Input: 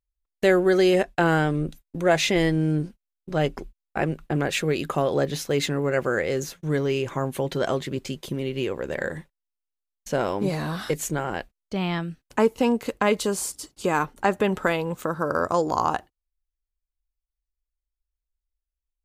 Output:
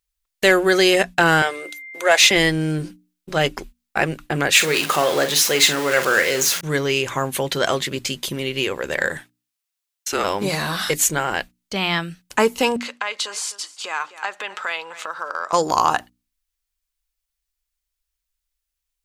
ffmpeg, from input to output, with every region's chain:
ffmpeg -i in.wav -filter_complex "[0:a]asettb=1/sr,asplit=3[link_01][link_02][link_03];[link_01]atrim=end=1.424[link_04];[link_02]atrim=start=1.42:end=2.31,asetpts=PTS-STARTPTS,afade=type=in:duration=0.004:curve=qsin,afade=type=out:start_time=0.886:duration=0.004:curve=qsin,highpass=frequency=420:width=0.5412,highpass=frequency=420:width=1.3066,aeval=exprs='val(0)+0.00501*sin(2*PI*2100*n/s)':channel_layout=same[link_05];[link_03]atrim=start=2.306[link_06];[link_04][link_05]acrossfade=duration=0.004:curve1=hsin:curve2=qsin[link_07];[link_07][link_06]acrossfade=duration=0.004:curve1=qsin:curve2=hsin,asettb=1/sr,asplit=3[link_08][link_09][link_10];[link_08]atrim=end=4.554[link_11];[link_09]atrim=start=4.55:end=6.61,asetpts=PTS-STARTPTS,afade=type=in:duration=0.004:curve=qsin,afade=type=out:start_time=2.056:duration=0.004:curve=qsin,aeval=exprs='val(0)+0.5*0.0282*sgn(val(0))':channel_layout=same,highpass=frequency=280:poles=1,asplit=2[link_12][link_13];[link_13]adelay=46,volume=-10dB[link_14];[link_12][link_14]amix=inputs=2:normalize=0,atrim=end_sample=90846[link_15];[link_10]atrim=start=6.606[link_16];[link_11][link_15]acrossfade=duration=0.004:curve1=hsin:curve2=qsin[link_17];[link_17][link_16]acrossfade=duration=0.004:curve1=qsin:curve2=hsin,asettb=1/sr,asplit=3[link_18][link_19][link_20];[link_18]atrim=end=9.174[link_21];[link_19]atrim=start=9.17:end=10.24,asetpts=PTS-STARTPTS,afade=type=in:duration=0.004:curve=qsin,afade=type=out:start_time=1.066:duration=0.004:curve=qsin,highpass=510,afreqshift=-170[link_22];[link_20]atrim=start=10.236[link_23];[link_21][link_22]acrossfade=duration=0.004:curve1=hsin:curve2=qsin[link_24];[link_24][link_23]acrossfade=duration=0.004:curve1=qsin:curve2=hsin,asettb=1/sr,asplit=3[link_25][link_26][link_27];[link_25]atrim=end=12.764[link_28];[link_26]atrim=start=12.76:end=15.53,asetpts=PTS-STARTPTS,afade=type=in:duration=0.004:curve=qsin,afade=type=out:start_time=2.766:duration=0.004:curve=qsin,aecho=1:1:255:0.0841,atrim=end_sample=122157,acompressor=threshold=-28dB:ratio=3:attack=3.2:release=140:knee=1:detection=peak,highpass=750,lowpass=5100[link_29];[link_27]atrim=start=15.526[link_30];[link_28][link_29]acrossfade=duration=0.004:curve1=hsin:curve2=qsin[link_31];[link_31][link_30]acrossfade=duration=0.004:curve1=qsin:curve2=hsin,tiltshelf=frequency=970:gain=-7,bandreject=frequency=60:width_type=h:width=6,bandreject=frequency=120:width_type=h:width=6,bandreject=frequency=180:width_type=h:width=6,bandreject=frequency=240:width_type=h:width=6,bandreject=frequency=300:width_type=h:width=6,acontrast=81" out.wav

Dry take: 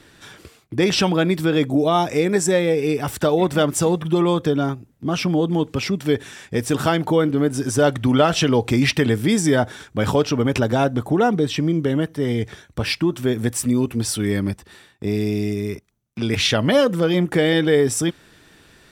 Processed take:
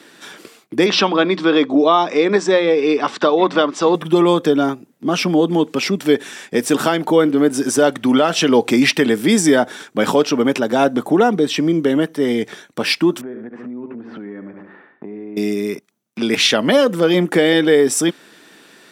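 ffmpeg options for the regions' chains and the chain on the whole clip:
ffmpeg -i in.wav -filter_complex "[0:a]asettb=1/sr,asplit=3[link_01][link_02][link_03];[link_01]atrim=end=0.864[link_04];[link_02]atrim=start=0.86:end=3.95,asetpts=PTS-STARTPTS,afade=type=in:duration=0.004:curve=qsin,afade=type=out:start_time=3.086:duration=0.004:curve=qsin,highpass=130,equalizer=frequency=150:width_type=q:width=4:gain=-7,equalizer=frequency=1100:width_type=q:width=4:gain=9,equalizer=frequency=3800:width_type=q:width=4:gain=3,lowpass=frequency=5300:width=0.5412,lowpass=frequency=5300:width=1.3066,bandreject=frequency=60:width_type=h:width=6,bandreject=frequency=120:width_type=h:width=6,bandreject=frequency=180:width_type=h:width=6,bandreject=frequency=240:width_type=h:width=6[link_05];[link_03]atrim=start=3.946[link_06];[link_04][link_05]acrossfade=duration=0.004:curve1=hsin:curve2=qsin[link_07];[link_07][link_06]acrossfade=duration=0.004:curve1=qsin:curve2=hsin,asettb=1/sr,asplit=3[link_08][link_09][link_10];[link_08]atrim=end=13.214[link_11];[link_09]atrim=start=13.21:end=15.37,asetpts=PTS-STARTPTS,afade=type=in:duration=0.004:curve=qsin,afade=type=out:start_time=2.156:duration=0.004:curve=qsin,lowpass=frequency=1800:width=0.5412,lowpass=frequency=1800:width=1.3066,aecho=1:1:73|146|219|292:0.282|0.116|0.0474|0.0194,atrim=end_sample=95256,acompressor=threshold=-31dB:ratio=8:attack=3.2:release=140:knee=1:detection=peak[link_12];[link_10]atrim=start=15.366[link_13];[link_11][link_12]acrossfade=duration=0.004:curve1=hsin:curve2=qsin[link_14];[link_14][link_13]acrossfade=duration=0.004:curve1=qsin:curve2=hsin,highpass=frequency=200:width=0.5412,highpass=frequency=200:width=1.3066,alimiter=limit=-8.5dB:level=0:latency=1:release=354,volume=5.5dB" out.wav

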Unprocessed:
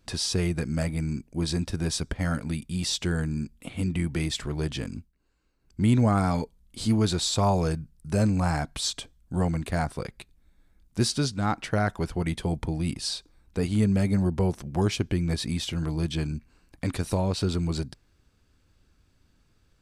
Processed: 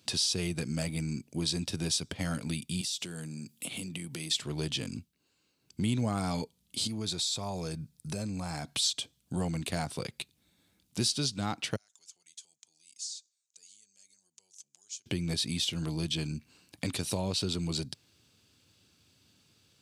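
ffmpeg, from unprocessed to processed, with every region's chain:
ffmpeg -i in.wav -filter_complex "[0:a]asettb=1/sr,asplit=3[link_01][link_02][link_03];[link_01]atrim=end=2.814[link_04];[link_02]atrim=start=2.81:end=4.31,asetpts=PTS-STARTPTS,afade=type=in:duration=0.004:curve=qsin,afade=type=out:start_time=1.496:duration=0.004:curve=qsin,highpass=frequency=110:width=0.5412,highpass=frequency=110:width=1.3066,highshelf=frequency=7500:gain=10.5,acompressor=threshold=-37dB:ratio=6:attack=3.2:release=140:knee=1:detection=peak[link_05];[link_03]atrim=start=4.306[link_06];[link_04][link_05]acrossfade=duration=0.004:curve1=hsin:curve2=qsin[link_07];[link_07][link_06]acrossfade=duration=0.004:curve1=qsin:curve2=hsin,asettb=1/sr,asplit=3[link_08][link_09][link_10];[link_08]atrim=end=6.874[link_11];[link_09]atrim=start=6.87:end=8.7,asetpts=PTS-STARTPTS,afade=type=in:duration=0.004:curve=qsin,afade=type=out:start_time=1.826:duration=0.004:curve=qsin,bandreject=frequency=2900:width=9.1,acompressor=threshold=-33dB:ratio=3:attack=3.2:release=140:knee=1:detection=peak[link_12];[link_10]atrim=start=8.696[link_13];[link_11][link_12]acrossfade=duration=0.004:curve1=hsin:curve2=qsin[link_14];[link_14][link_13]acrossfade=duration=0.004:curve1=qsin:curve2=hsin,asettb=1/sr,asplit=3[link_15][link_16][link_17];[link_15]atrim=end=11.764[link_18];[link_16]atrim=start=11.76:end=15.06,asetpts=PTS-STARTPTS,afade=type=in:duration=0.004:curve=qsin,afade=type=out:start_time=3.296:duration=0.004:curve=qsin,acompressor=threshold=-32dB:ratio=6:attack=3.2:release=140:knee=1:detection=peak,bandpass=frequency=6800:width_type=q:width=6.1[link_19];[link_17]atrim=start=15.056[link_20];[link_18][link_19]acrossfade=duration=0.004:curve1=hsin:curve2=qsin[link_21];[link_21][link_20]acrossfade=duration=0.004:curve1=qsin:curve2=hsin,highpass=frequency=97:width=0.5412,highpass=frequency=97:width=1.3066,highshelf=frequency=2300:width_type=q:width=1.5:gain=7.5,acompressor=threshold=-33dB:ratio=2" out.wav

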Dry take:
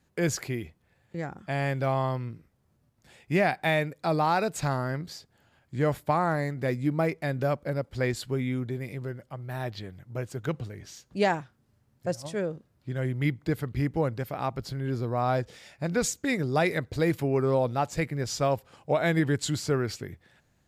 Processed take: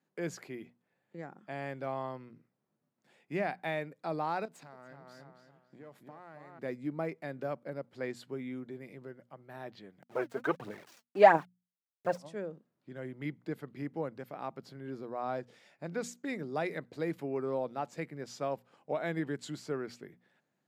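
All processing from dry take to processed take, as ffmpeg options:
ffmpeg -i in.wav -filter_complex "[0:a]asettb=1/sr,asplit=3[link_01][link_02][link_03];[link_01]atrim=end=4.454[link_04];[link_02]atrim=start=4.45:end=6.59,asetpts=PTS-STARTPTS,afade=type=in:duration=0.004:curve=qsin,afade=type=out:start_time=2.136:duration=0.004:curve=qsin,aeval=exprs='if(lt(val(0),0),0.447*val(0),val(0))':channel_layout=same,asplit=2[link_05][link_06];[link_06]adelay=276,lowpass=frequency=3500:poles=1,volume=-7dB,asplit=2[link_07][link_08];[link_08]adelay=276,lowpass=frequency=3500:poles=1,volume=0.33,asplit=2[link_09][link_10];[link_10]adelay=276,lowpass=frequency=3500:poles=1,volume=0.33,asplit=2[link_11][link_12];[link_12]adelay=276,lowpass=frequency=3500:poles=1,volume=0.33[link_13];[link_05][link_07][link_09][link_11][link_13]amix=inputs=5:normalize=0,atrim=end_sample=94374,acompressor=threshold=-35dB:ratio=16:attack=3.2:release=140:knee=1:detection=peak[link_14];[link_03]atrim=start=6.586[link_15];[link_04][link_14]acrossfade=duration=0.004:curve1=hsin:curve2=qsin[link_16];[link_16][link_15]acrossfade=duration=0.004:curve1=qsin:curve2=hsin,asettb=1/sr,asplit=3[link_17][link_18][link_19];[link_17]atrim=end=10.024[link_20];[link_18]atrim=start=10.02:end=12.18,asetpts=PTS-STARTPTS,afade=type=in:duration=0.004:curve=qsin,afade=type=out:start_time=2.156:duration=0.004:curve=qsin,equalizer=frequency=950:width=0.39:gain=13.5,aeval=exprs='val(0)*gte(abs(val(0)),0.0119)':channel_layout=same,aphaser=in_gain=1:out_gain=1:delay=4.7:decay=0.59:speed=1.5:type=triangular[link_21];[link_19]atrim=start=12.176[link_22];[link_20][link_21]acrossfade=duration=0.004:curve1=hsin:curve2=qsin[link_23];[link_23][link_22]acrossfade=duration=0.004:curve1=qsin:curve2=hsin,highpass=frequency=170:width=0.5412,highpass=frequency=170:width=1.3066,highshelf=frequency=3400:gain=-9,bandreject=frequency=60:width_type=h:width=6,bandreject=frequency=120:width_type=h:width=6,bandreject=frequency=180:width_type=h:width=6,bandreject=frequency=240:width_type=h:width=6,volume=-8.5dB" out.wav

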